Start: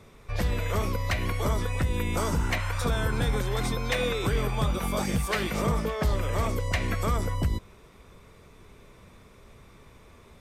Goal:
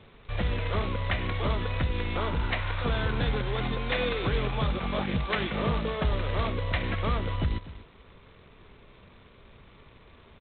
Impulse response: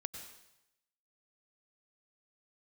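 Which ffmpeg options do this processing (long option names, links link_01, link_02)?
-filter_complex "[0:a]asplit=3[link_01][link_02][link_03];[link_01]afade=type=out:start_time=1.9:duration=0.02[link_04];[link_02]adynamicequalizer=threshold=0.01:dfrequency=190:dqfactor=1.1:tfrequency=190:tqfactor=1.1:attack=5:release=100:ratio=0.375:range=2:mode=cutabove:tftype=bell,afade=type=in:start_time=1.9:duration=0.02,afade=type=out:start_time=2.68:duration=0.02[link_05];[link_03]afade=type=in:start_time=2.68:duration=0.02[link_06];[link_04][link_05][link_06]amix=inputs=3:normalize=0,asplit=2[link_07][link_08];[link_08]adelay=244.9,volume=-16dB,highshelf=frequency=4000:gain=-5.51[link_09];[link_07][link_09]amix=inputs=2:normalize=0,volume=-1.5dB" -ar 8000 -c:a adpcm_g726 -b:a 16k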